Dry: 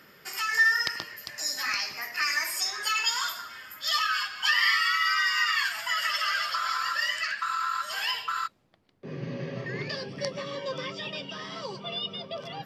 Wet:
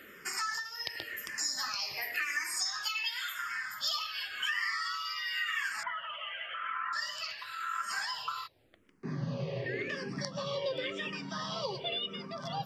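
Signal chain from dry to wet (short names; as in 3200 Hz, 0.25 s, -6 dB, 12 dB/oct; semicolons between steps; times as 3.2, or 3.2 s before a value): 2.65–3.81 graphic EQ 250/500/2000 Hz -10/-9/+7 dB; compressor 6:1, threshold -34 dBFS, peak gain reduction 15 dB; 5.83–6.93 rippled Chebyshev low-pass 3200 Hz, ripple 3 dB; endless phaser -0.92 Hz; gain +4.5 dB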